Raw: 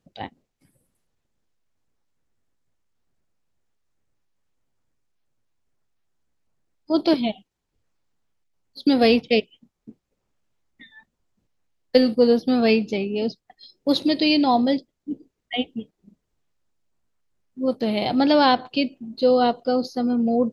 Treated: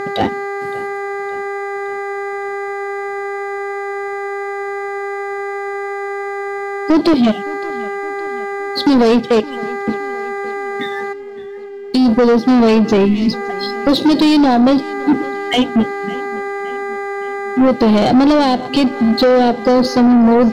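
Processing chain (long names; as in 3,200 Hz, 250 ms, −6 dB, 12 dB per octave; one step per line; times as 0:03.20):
hum with harmonics 400 Hz, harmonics 5, −44 dBFS 0 dB per octave
parametric band 240 Hz −6 dB 2.5 octaves
downward compressor 6 to 1, threshold −30 dBFS, peak gain reduction 15.5 dB
gain on a spectral selection 0:11.13–0:12.06, 410–2,300 Hz −22 dB
leveller curve on the samples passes 2
drawn EQ curve 300 Hz 0 dB, 1,400 Hz −24 dB, 4,000 Hz −17 dB
on a send at −20 dB: convolution reverb, pre-delay 3 ms
on the sum: mid-hump overdrive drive 32 dB, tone 3,700 Hz, clips at −9.5 dBFS
gain on a spectral selection 0:13.05–0:13.33, 390–1,900 Hz −26 dB
feedback echo with a swinging delay time 566 ms, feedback 52%, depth 66 cents, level −20 dB
level +7.5 dB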